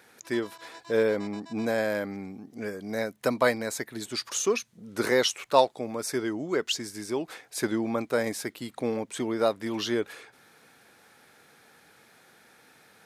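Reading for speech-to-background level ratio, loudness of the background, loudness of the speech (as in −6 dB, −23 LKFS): 20.0 dB, −49.0 LKFS, −29.0 LKFS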